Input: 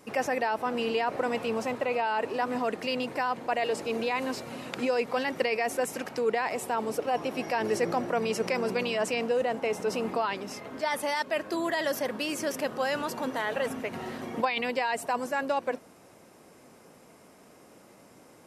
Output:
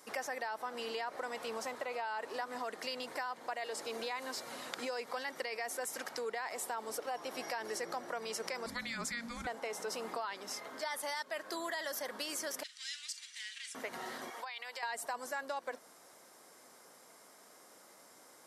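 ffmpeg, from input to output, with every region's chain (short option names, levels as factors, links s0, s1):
-filter_complex "[0:a]asettb=1/sr,asplit=3[s0][s1][s2];[s0]atrim=end=8.664[s3];[s1]atrim=start=8.66:end=9.47,asetpts=PTS-STARTPTS,afade=t=in:d=0.004:c=qsin,afade=t=out:st=0.806:d=0.004:c=qsin,highpass=f=250:t=q:w=2.2,afreqshift=-460[s4];[s2]atrim=start=9.466[s5];[s3][s4]acrossfade=d=0.004:c1=hsin:c2=qsin[s6];[s6][s5]acrossfade=d=0.004:c1=qsin:c2=hsin,asettb=1/sr,asplit=3[s7][s8][s9];[s7]atrim=end=12.634[s10];[s8]atrim=start=12.63:end=13.75,asetpts=PTS-STARTPTS,afade=t=in:d=0.004:c=qsin,afade=t=out:st=1.116:d=0.004:c=qsin,aeval=exprs='clip(val(0),-1,0.0376)':c=same,asuperpass=centerf=4800:order=8:qfactor=0.68,asplit=2[s11][s12];[s12]adelay=46,volume=0.224[s13];[s11][s13]amix=inputs=2:normalize=0,atrim=end_sample=49392[s14];[s9]atrim=start=13.746[s15];[s10][s14]acrossfade=d=0.004:c1=hsin:c2=qsin[s16];[s16][s15]acrossfade=d=0.004:c1=qsin:c2=hsin,asettb=1/sr,asplit=3[s17][s18][s19];[s17]atrim=end=14.304[s20];[s18]atrim=start=14.3:end=14.83,asetpts=PTS-STARTPTS,afade=t=in:d=0.004:c=qsin,afade=t=out:st=0.526:d=0.004:c=qsin,highpass=730,acompressor=threshold=0.0158:ratio=6:attack=3.2:release=140:knee=1:detection=peak[s21];[s19]atrim=start=14.826[s22];[s20][s21]acrossfade=d=0.004:c1=hsin:c2=qsin[s23];[s23][s22]acrossfade=d=0.004:c1=qsin:c2=hsin,highpass=f=1500:p=1,equalizer=f=2600:w=3.7:g=-10.5,acompressor=threshold=0.0112:ratio=4,volume=1.33"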